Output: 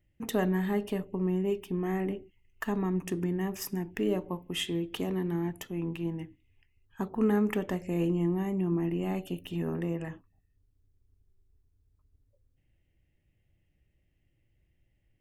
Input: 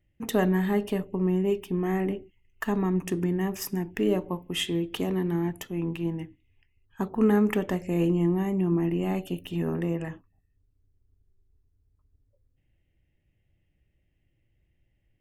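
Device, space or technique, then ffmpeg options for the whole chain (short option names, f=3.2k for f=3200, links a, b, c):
parallel compression: -filter_complex "[0:a]asplit=2[a][b];[b]acompressor=threshold=-39dB:ratio=6,volume=-4.5dB[c];[a][c]amix=inputs=2:normalize=0,volume=-5dB"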